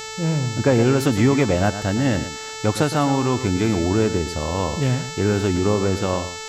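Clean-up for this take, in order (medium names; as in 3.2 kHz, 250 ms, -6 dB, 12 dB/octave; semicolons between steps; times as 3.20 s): de-hum 439 Hz, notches 18; expander -24 dBFS, range -21 dB; inverse comb 114 ms -11.5 dB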